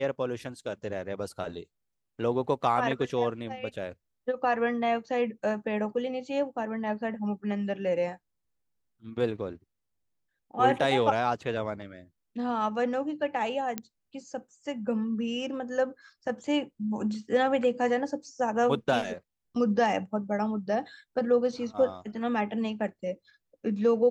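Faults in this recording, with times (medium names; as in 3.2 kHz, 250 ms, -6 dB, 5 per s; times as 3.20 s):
13.78 s: pop -15 dBFS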